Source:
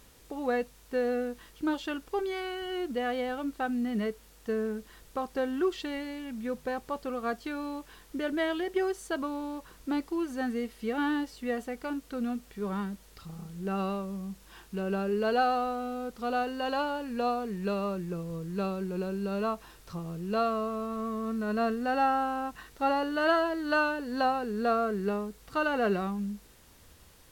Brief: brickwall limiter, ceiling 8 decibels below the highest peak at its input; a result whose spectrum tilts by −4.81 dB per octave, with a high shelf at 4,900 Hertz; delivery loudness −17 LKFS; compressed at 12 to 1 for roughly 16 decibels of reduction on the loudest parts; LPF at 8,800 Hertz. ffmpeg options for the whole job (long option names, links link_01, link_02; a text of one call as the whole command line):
ffmpeg -i in.wav -af "lowpass=8800,highshelf=frequency=4900:gain=4.5,acompressor=threshold=-38dB:ratio=12,volume=26.5dB,alimiter=limit=-8.5dB:level=0:latency=1" out.wav